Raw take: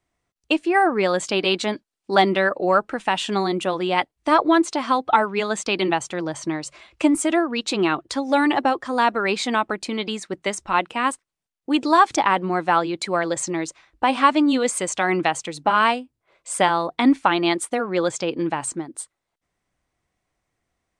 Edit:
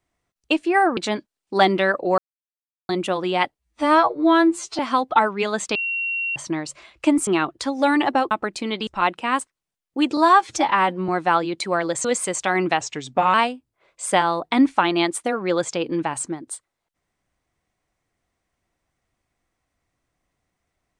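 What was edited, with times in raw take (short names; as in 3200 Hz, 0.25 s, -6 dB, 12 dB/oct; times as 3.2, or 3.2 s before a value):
0.97–1.54 cut
2.75–3.46 mute
4.16–4.76 stretch 2×
5.72–6.33 bleep 2740 Hz -22 dBFS
7.24–7.77 cut
8.81–9.58 cut
10.14–10.59 cut
11.89–12.5 stretch 1.5×
13.46–14.58 cut
15.34–15.81 speed 88%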